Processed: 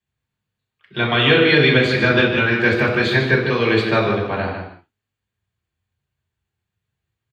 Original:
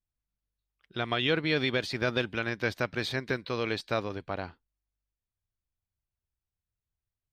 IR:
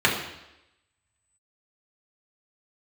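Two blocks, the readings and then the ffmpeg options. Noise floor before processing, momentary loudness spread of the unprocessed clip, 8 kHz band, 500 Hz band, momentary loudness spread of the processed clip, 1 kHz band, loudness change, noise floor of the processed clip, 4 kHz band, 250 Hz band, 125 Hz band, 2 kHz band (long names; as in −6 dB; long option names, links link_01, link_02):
below −85 dBFS, 10 LU, can't be measured, +14.0 dB, 11 LU, +13.0 dB, +14.5 dB, −83 dBFS, +12.5 dB, +14.5 dB, +15.5 dB, +15.5 dB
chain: -filter_complex "[0:a]asplit=2[link_01][link_02];[link_02]adelay=151.6,volume=-7dB,highshelf=frequency=4000:gain=-3.41[link_03];[link_01][link_03]amix=inputs=2:normalize=0[link_04];[1:a]atrim=start_sample=2205,afade=type=out:start_time=0.25:duration=0.01,atrim=end_sample=11466[link_05];[link_04][link_05]afir=irnorm=-1:irlink=0,volume=-4.5dB"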